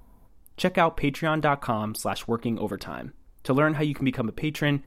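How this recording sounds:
background noise floor −54 dBFS
spectral slope −5.0 dB per octave

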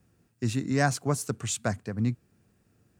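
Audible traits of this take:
background noise floor −69 dBFS
spectral slope −5.0 dB per octave

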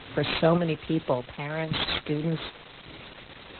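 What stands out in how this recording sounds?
aliases and images of a low sample rate 14,000 Hz, jitter 0%
sample-and-hold tremolo, depth 75%
a quantiser's noise floor 8 bits, dither triangular
Opus

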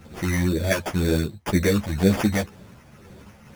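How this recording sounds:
phaser sweep stages 12, 2 Hz, lowest notch 390–1,300 Hz
aliases and images of a low sample rate 4,000 Hz, jitter 0%
a shimmering, thickened sound

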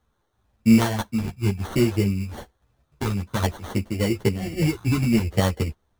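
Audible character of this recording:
a quantiser's noise floor 12 bits, dither triangular
phaser sweep stages 12, 0.56 Hz, lowest notch 580–3,500 Hz
aliases and images of a low sample rate 2,500 Hz, jitter 0%
a shimmering, thickened sound

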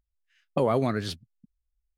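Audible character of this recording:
background noise floor −83 dBFS
spectral slope −6.0 dB per octave

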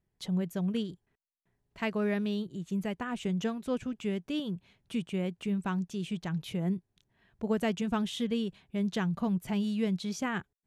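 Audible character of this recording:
background noise floor −82 dBFS
spectral slope −6.0 dB per octave

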